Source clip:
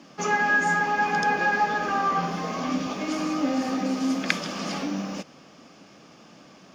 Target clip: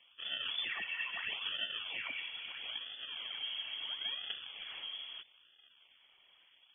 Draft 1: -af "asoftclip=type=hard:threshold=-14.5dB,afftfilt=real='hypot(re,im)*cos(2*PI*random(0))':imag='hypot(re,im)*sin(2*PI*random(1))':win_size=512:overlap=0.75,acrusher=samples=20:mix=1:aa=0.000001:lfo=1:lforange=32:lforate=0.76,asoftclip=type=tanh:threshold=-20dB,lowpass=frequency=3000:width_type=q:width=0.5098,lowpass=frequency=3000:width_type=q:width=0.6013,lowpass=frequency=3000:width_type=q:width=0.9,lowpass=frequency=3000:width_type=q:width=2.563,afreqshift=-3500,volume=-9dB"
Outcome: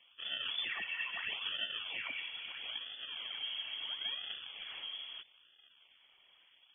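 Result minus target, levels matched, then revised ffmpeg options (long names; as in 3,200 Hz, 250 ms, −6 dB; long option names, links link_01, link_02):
hard clipping: distortion +16 dB
-af "asoftclip=type=hard:threshold=-5.5dB,afftfilt=real='hypot(re,im)*cos(2*PI*random(0))':imag='hypot(re,im)*sin(2*PI*random(1))':win_size=512:overlap=0.75,acrusher=samples=20:mix=1:aa=0.000001:lfo=1:lforange=32:lforate=0.76,asoftclip=type=tanh:threshold=-20dB,lowpass=frequency=3000:width_type=q:width=0.5098,lowpass=frequency=3000:width_type=q:width=0.6013,lowpass=frequency=3000:width_type=q:width=0.9,lowpass=frequency=3000:width_type=q:width=2.563,afreqshift=-3500,volume=-9dB"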